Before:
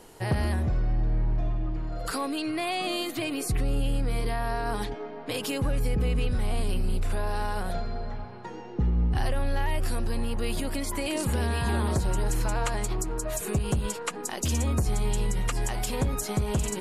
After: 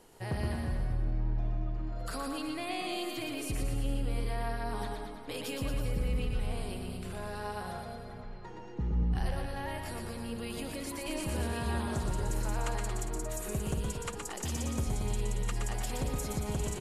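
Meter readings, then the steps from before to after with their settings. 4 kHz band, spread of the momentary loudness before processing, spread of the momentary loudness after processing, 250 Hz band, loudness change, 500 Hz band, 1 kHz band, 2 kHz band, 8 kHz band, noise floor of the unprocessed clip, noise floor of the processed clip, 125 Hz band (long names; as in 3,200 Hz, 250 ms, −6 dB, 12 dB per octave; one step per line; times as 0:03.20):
−6.5 dB, 6 LU, 6 LU, −6.0 dB, −6.5 dB, −6.5 dB, −6.0 dB, −6.5 dB, −6.5 dB, −39 dBFS, −44 dBFS, −6.5 dB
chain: bouncing-ball delay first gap 120 ms, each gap 0.9×, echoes 5
level −8.5 dB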